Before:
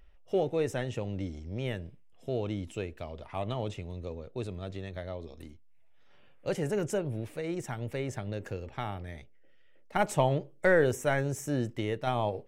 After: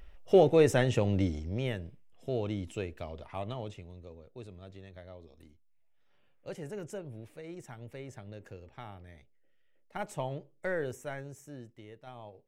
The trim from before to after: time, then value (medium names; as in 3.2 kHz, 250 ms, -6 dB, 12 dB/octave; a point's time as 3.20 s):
1.23 s +7 dB
1.74 s -0.5 dB
3.13 s -0.5 dB
4.07 s -10 dB
10.92 s -10 dB
11.80 s -18 dB